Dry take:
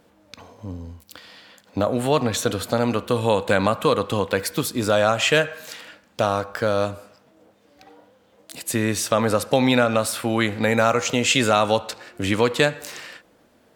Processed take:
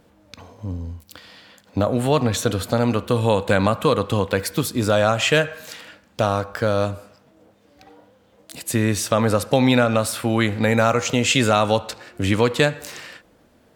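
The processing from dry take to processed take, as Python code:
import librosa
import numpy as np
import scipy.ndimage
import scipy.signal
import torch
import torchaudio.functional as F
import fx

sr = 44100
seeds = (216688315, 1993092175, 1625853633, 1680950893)

y = fx.low_shelf(x, sr, hz=140.0, db=9.0)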